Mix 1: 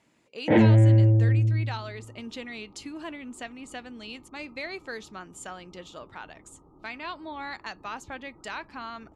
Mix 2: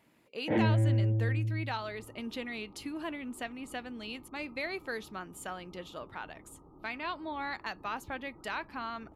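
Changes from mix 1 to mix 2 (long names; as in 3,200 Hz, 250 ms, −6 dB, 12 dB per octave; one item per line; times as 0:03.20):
first sound −9.5 dB
master: remove low-pass with resonance 7,300 Hz, resonance Q 2.2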